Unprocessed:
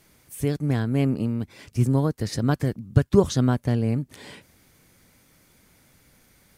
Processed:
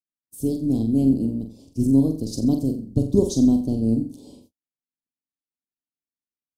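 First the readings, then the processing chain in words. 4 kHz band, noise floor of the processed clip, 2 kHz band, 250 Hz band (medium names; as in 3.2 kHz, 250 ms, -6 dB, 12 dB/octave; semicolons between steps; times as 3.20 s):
-3.0 dB, under -85 dBFS, under -30 dB, +5.5 dB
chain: octave divider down 2 oct, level -6 dB; peaking EQ 270 Hz +14.5 dB 0.9 oct; on a send: flutter echo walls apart 7.6 m, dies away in 0.42 s; on the sum: gate -43 dBFS, range -48 dB; Chebyshev band-stop 620–4700 Hz, order 2; treble shelf 2.8 kHz +10 dB; tape noise reduction on one side only decoder only; trim -7.5 dB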